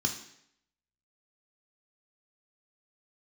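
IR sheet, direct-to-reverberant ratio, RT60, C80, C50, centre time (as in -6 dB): 3.0 dB, 0.70 s, 12.0 dB, 9.0 dB, 18 ms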